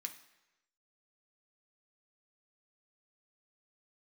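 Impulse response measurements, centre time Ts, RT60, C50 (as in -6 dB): 11 ms, 1.0 s, 11.5 dB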